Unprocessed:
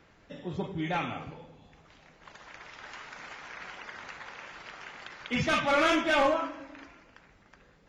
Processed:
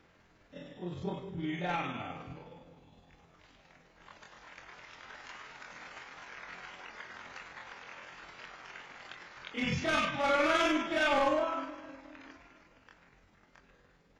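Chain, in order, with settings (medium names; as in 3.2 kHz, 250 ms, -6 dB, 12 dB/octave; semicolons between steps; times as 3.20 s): granular stretch 1.8×, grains 103 ms; trim -2.5 dB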